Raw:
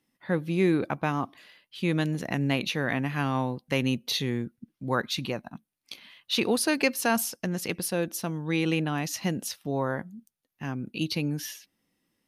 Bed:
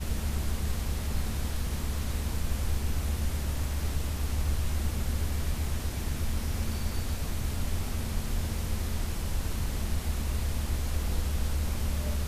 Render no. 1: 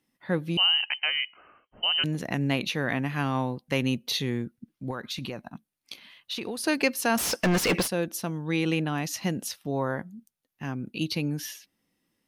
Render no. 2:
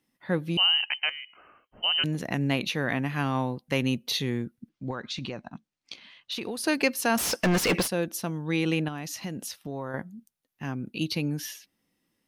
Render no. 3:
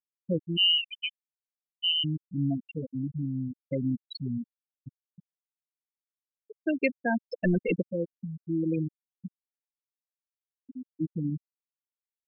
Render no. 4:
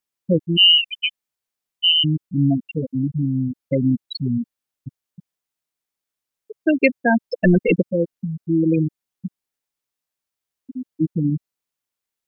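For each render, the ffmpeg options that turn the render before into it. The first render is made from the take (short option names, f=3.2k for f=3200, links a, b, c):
-filter_complex "[0:a]asettb=1/sr,asplit=3[a][b][c];[a]atrim=end=0.574[d];[b]atrim=start=0.57:end=2.04,asetpts=PTS-STARTPTS,afade=t=in:d=0.004:c=qsin,afade=t=out:st=1.466:d=0.004:c=qsin,lowpass=f=2.7k:t=q:w=0.5098,lowpass=f=2.7k:t=q:w=0.6013,lowpass=f=2.7k:t=q:w=0.9,lowpass=f=2.7k:t=q:w=2.563,afreqshift=-3200[e];[c]atrim=start=2.036[f];[d][e]acrossfade=d=0.004:c1=hsin:c2=qsin[g];[g][f]acrossfade=d=0.004:c1=qsin:c2=hsin,asettb=1/sr,asplit=3[h][i][j];[h]atrim=end=4.904[k];[i]atrim=start=4.9:end=6.64,asetpts=PTS-STARTPTS,afade=t=in:d=0.004:c=qsin,afade=t=out:st=1.736:d=0.004:c=qsin,acompressor=threshold=-29dB:ratio=10:attack=3.2:release=140:knee=1:detection=peak[l];[j]atrim=start=6.636[m];[k][l]acrossfade=d=0.004:c1=hsin:c2=qsin[n];[n][m]acrossfade=d=0.004:c1=qsin:c2=hsin,asplit=3[o][p][q];[o]afade=t=out:st=7.17:d=0.02[r];[p]asplit=2[s][t];[t]highpass=f=720:p=1,volume=32dB,asoftclip=type=tanh:threshold=-14.5dB[u];[s][u]amix=inputs=2:normalize=0,lowpass=f=3.1k:p=1,volume=-6dB,afade=t=in:st=7.17:d=0.02,afade=t=out:st=7.86:d=0.02[v];[q]afade=t=in:st=7.86:d=0.02[w];[r][v][w]amix=inputs=3:normalize=0"
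-filter_complex "[0:a]asettb=1/sr,asplit=3[a][b][c];[a]atrim=end=1.094[d];[b]atrim=start=1.09:end=1.84,asetpts=PTS-STARTPTS,afade=t=in:d=0.004:c=qsin,afade=t=out:st=0.746:d=0.004:c=qsin,acompressor=threshold=-36dB:ratio=6:attack=3.2:release=140:knee=1:detection=peak[e];[c]atrim=start=1.836[f];[d][e]acrossfade=d=0.004:c1=hsin:c2=qsin[g];[g][f]acrossfade=d=0.004:c1=qsin:c2=hsin,asettb=1/sr,asplit=3[h][i][j];[h]atrim=end=4.694[k];[i]atrim=start=4.69:end=6.32,asetpts=PTS-STARTPTS,afade=t=in:d=0.004:c=qsin,afade=t=out:st=1.626:d=0.004:c=qsin,lowpass=f=7.3k:w=0.5412,lowpass=f=7.3k:w=1.3066[l];[j]atrim=start=6.316[m];[k][l]acrossfade=d=0.004:c1=hsin:c2=qsin[n];[n][m]acrossfade=d=0.004:c1=qsin:c2=hsin,asettb=1/sr,asplit=3[o][p][q];[o]atrim=end=8.884[r];[p]atrim=start=8.88:end=9.94,asetpts=PTS-STARTPTS,afade=t=in:d=0.004:c=qsin,afade=t=out:st=1.056:d=0.004:c=qsin,acompressor=threshold=-33dB:ratio=2.5:attack=3.2:release=140:knee=1:detection=peak[s];[q]atrim=start=9.936[t];[r][s]acrossfade=d=0.004:c1=hsin:c2=qsin[u];[u][t]acrossfade=d=0.004:c1=qsin:c2=hsin"
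-af "afftfilt=real='re*gte(hypot(re,im),0.251)':imag='im*gte(hypot(re,im),0.251)':win_size=1024:overlap=0.75,equalizer=f=780:t=o:w=0.77:g=-3"
-af "volume=10.5dB"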